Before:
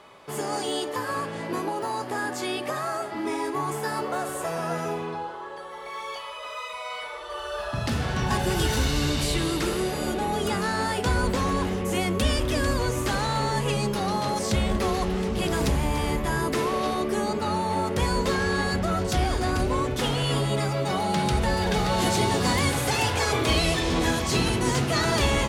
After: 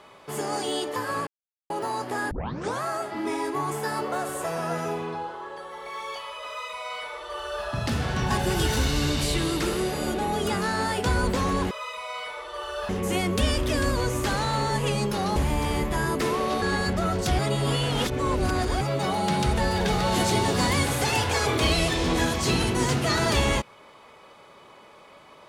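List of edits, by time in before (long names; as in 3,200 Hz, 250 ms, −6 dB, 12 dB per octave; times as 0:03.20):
0:01.27–0:01.70: silence
0:02.31: tape start 0.51 s
0:06.47–0:07.65: duplicate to 0:11.71
0:14.18–0:15.69: remove
0:16.95–0:18.48: remove
0:19.25–0:20.67: reverse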